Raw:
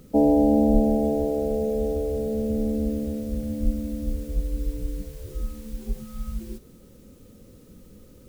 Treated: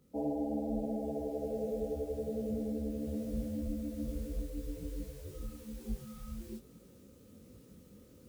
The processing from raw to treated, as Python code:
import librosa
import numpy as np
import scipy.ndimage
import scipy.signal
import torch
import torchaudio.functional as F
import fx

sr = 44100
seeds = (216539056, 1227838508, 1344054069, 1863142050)

y = fx.rider(x, sr, range_db=5, speed_s=0.5)
y = scipy.signal.sosfilt(scipy.signal.butter(2, 58.0, 'highpass', fs=sr, output='sos'), y)
y = fx.detune_double(y, sr, cents=41)
y = y * 10.0 ** (-8.0 / 20.0)